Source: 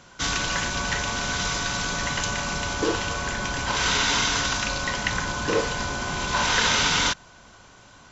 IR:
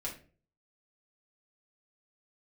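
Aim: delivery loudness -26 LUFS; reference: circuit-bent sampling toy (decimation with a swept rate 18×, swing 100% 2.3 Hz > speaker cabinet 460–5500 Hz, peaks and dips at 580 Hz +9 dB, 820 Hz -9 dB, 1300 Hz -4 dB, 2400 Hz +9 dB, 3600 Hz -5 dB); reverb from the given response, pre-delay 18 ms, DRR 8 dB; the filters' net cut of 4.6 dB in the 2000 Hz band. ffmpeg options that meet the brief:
-filter_complex "[0:a]equalizer=f=2k:t=o:g=-8.5,asplit=2[a][b];[1:a]atrim=start_sample=2205,adelay=18[c];[b][c]afir=irnorm=-1:irlink=0,volume=-9dB[d];[a][d]amix=inputs=2:normalize=0,acrusher=samples=18:mix=1:aa=0.000001:lfo=1:lforange=18:lforate=2.3,highpass=460,equalizer=f=580:t=q:w=4:g=9,equalizer=f=820:t=q:w=4:g=-9,equalizer=f=1.3k:t=q:w=4:g=-4,equalizer=f=2.4k:t=q:w=4:g=9,equalizer=f=3.6k:t=q:w=4:g=-5,lowpass=f=5.5k:w=0.5412,lowpass=f=5.5k:w=1.3066,volume=2dB"

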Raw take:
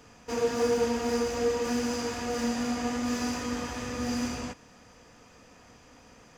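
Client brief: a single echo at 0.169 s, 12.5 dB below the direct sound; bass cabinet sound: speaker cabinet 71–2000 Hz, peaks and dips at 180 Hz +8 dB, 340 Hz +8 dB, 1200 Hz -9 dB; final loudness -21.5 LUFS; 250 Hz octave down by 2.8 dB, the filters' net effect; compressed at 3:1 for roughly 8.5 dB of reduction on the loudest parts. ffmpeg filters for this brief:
-af "equalizer=f=250:t=o:g=-5.5,acompressor=threshold=-35dB:ratio=3,highpass=f=71:w=0.5412,highpass=f=71:w=1.3066,equalizer=f=180:t=q:w=4:g=8,equalizer=f=340:t=q:w=4:g=8,equalizer=f=1.2k:t=q:w=4:g=-9,lowpass=f=2k:w=0.5412,lowpass=f=2k:w=1.3066,aecho=1:1:169:0.237,volume=15.5dB"

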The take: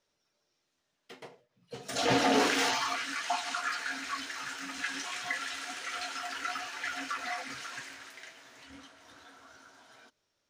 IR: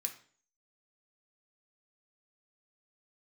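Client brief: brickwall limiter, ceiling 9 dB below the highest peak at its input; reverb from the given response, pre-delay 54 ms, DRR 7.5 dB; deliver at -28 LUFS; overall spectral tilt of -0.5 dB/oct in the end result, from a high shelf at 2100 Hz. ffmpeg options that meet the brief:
-filter_complex "[0:a]highshelf=f=2.1k:g=4.5,alimiter=limit=-22dB:level=0:latency=1,asplit=2[a][b];[1:a]atrim=start_sample=2205,adelay=54[c];[b][c]afir=irnorm=-1:irlink=0,volume=-5.5dB[d];[a][d]amix=inputs=2:normalize=0,volume=4dB"

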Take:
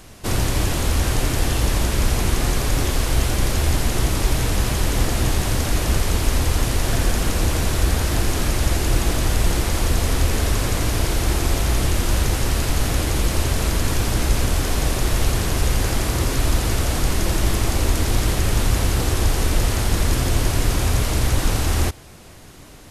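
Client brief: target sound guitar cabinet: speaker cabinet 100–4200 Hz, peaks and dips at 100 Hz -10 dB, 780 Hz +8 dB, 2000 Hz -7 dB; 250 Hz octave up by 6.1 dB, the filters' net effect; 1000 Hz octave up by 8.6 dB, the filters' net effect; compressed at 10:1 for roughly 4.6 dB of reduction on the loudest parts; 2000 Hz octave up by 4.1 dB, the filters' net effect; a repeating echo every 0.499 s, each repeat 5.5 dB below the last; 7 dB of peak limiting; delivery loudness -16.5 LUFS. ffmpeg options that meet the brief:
-af "equalizer=f=250:t=o:g=8,equalizer=f=1k:t=o:g=4,equalizer=f=2k:t=o:g=7.5,acompressor=threshold=-16dB:ratio=10,alimiter=limit=-14.5dB:level=0:latency=1,highpass=100,equalizer=f=100:t=q:w=4:g=-10,equalizer=f=780:t=q:w=4:g=8,equalizer=f=2k:t=q:w=4:g=-7,lowpass=f=4.2k:w=0.5412,lowpass=f=4.2k:w=1.3066,aecho=1:1:499|998|1497|1996|2495|2994|3493:0.531|0.281|0.149|0.079|0.0419|0.0222|0.0118,volume=9dB"

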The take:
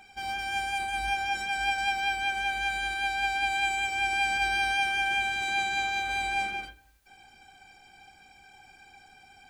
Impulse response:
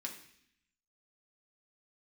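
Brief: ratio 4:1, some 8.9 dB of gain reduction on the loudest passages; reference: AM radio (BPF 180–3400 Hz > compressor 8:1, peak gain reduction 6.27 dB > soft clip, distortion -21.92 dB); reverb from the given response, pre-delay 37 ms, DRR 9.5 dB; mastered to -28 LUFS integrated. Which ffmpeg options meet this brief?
-filter_complex "[0:a]acompressor=threshold=-35dB:ratio=4,asplit=2[a][b];[1:a]atrim=start_sample=2205,adelay=37[c];[b][c]afir=irnorm=-1:irlink=0,volume=-8.5dB[d];[a][d]amix=inputs=2:normalize=0,highpass=180,lowpass=3.4k,acompressor=threshold=-38dB:ratio=8,asoftclip=threshold=-35dB,volume=13dB"

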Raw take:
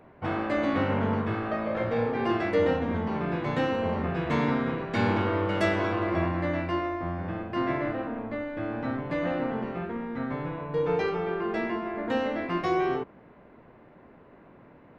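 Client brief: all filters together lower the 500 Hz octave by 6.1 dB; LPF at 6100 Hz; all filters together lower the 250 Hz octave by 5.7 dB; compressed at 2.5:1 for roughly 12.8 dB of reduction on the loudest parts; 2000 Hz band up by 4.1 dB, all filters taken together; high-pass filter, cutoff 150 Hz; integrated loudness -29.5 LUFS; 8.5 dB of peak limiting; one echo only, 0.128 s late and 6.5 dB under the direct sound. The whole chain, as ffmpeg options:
-af "highpass=150,lowpass=6.1k,equalizer=f=250:t=o:g=-4.5,equalizer=f=500:t=o:g=-6.5,equalizer=f=2k:t=o:g=5.5,acompressor=threshold=-42dB:ratio=2.5,alimiter=level_in=9.5dB:limit=-24dB:level=0:latency=1,volume=-9.5dB,aecho=1:1:128:0.473,volume=12dB"

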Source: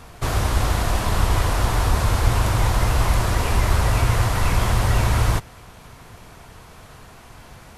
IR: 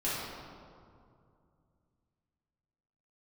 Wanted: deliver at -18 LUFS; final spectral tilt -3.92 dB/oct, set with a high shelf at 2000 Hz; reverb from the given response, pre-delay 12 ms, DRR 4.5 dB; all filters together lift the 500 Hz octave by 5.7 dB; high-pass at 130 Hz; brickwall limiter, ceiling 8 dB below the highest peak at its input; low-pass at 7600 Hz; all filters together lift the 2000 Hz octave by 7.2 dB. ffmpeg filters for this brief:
-filter_complex "[0:a]highpass=130,lowpass=7.6k,equalizer=f=500:t=o:g=6.5,highshelf=f=2k:g=4.5,equalizer=f=2k:t=o:g=6,alimiter=limit=-16dB:level=0:latency=1,asplit=2[a][b];[1:a]atrim=start_sample=2205,adelay=12[c];[b][c]afir=irnorm=-1:irlink=0,volume=-12.5dB[d];[a][d]amix=inputs=2:normalize=0,volume=5.5dB"

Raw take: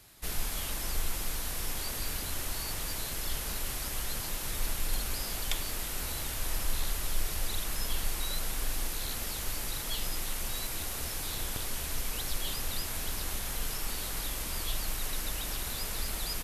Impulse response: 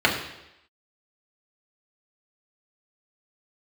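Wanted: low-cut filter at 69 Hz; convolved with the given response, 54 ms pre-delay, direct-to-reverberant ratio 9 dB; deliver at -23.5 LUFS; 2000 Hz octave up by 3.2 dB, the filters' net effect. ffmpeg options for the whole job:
-filter_complex "[0:a]highpass=69,equalizer=f=2k:t=o:g=4,asplit=2[a][b];[1:a]atrim=start_sample=2205,adelay=54[c];[b][c]afir=irnorm=-1:irlink=0,volume=-28dB[d];[a][d]amix=inputs=2:normalize=0,volume=10.5dB"

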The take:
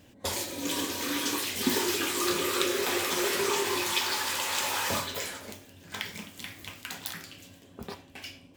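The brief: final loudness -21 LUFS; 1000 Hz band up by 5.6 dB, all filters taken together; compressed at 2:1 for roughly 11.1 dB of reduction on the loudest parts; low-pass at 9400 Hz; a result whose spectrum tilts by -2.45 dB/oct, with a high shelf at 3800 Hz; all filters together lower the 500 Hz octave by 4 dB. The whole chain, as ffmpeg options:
-af "lowpass=9.4k,equalizer=f=500:t=o:g=-7.5,equalizer=f=1k:t=o:g=8,highshelf=f=3.8k:g=4,acompressor=threshold=-42dB:ratio=2,volume=16dB"

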